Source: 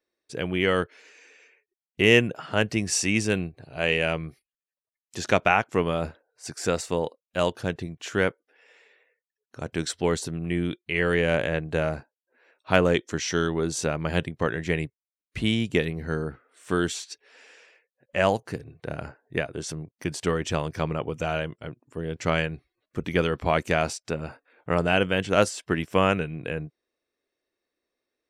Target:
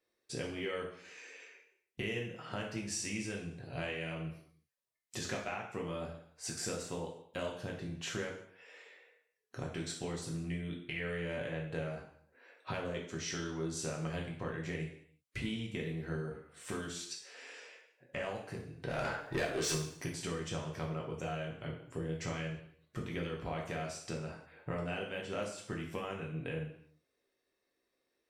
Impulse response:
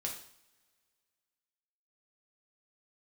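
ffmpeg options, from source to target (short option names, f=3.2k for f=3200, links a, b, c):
-filter_complex "[0:a]acompressor=threshold=-38dB:ratio=6,asplit=3[a][b][c];[a]afade=t=out:st=18.88:d=0.02[d];[b]asplit=2[e][f];[f]highpass=f=720:p=1,volume=25dB,asoftclip=type=tanh:threshold=-26dB[g];[e][g]amix=inputs=2:normalize=0,lowpass=f=6.1k:p=1,volume=-6dB,afade=t=in:st=18.88:d=0.02,afade=t=out:st=19.76:d=0.02[h];[c]afade=t=in:st=19.76:d=0.02[i];[d][h][i]amix=inputs=3:normalize=0[j];[1:a]atrim=start_sample=2205,afade=t=out:st=0.37:d=0.01,atrim=end_sample=16758,asetrate=38808,aresample=44100[k];[j][k]afir=irnorm=-1:irlink=0"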